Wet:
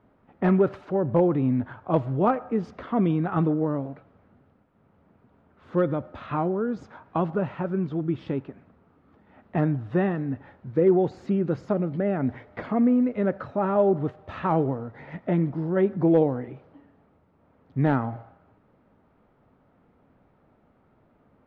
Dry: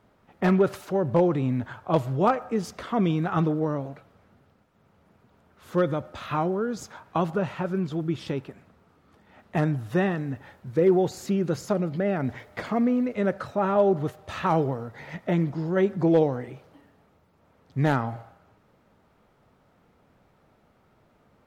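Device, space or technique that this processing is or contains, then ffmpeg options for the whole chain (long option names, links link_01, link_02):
phone in a pocket: -af "lowpass=3300,equalizer=frequency=270:width_type=o:width=0.44:gain=4.5,highshelf=frequency=2400:gain=-9"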